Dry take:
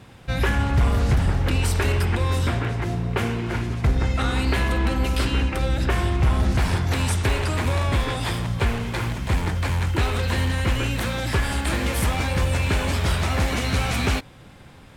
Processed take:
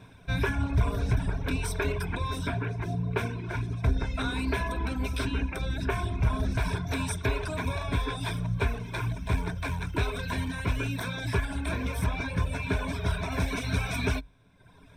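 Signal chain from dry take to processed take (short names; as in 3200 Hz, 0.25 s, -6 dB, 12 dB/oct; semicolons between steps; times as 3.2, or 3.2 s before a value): high shelf 3700 Hz -4.5 dB, from 11.45 s -10 dB, from 13.32 s -4 dB; reverb removal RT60 1.1 s; ripple EQ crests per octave 1.6, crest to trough 11 dB; gain -5.5 dB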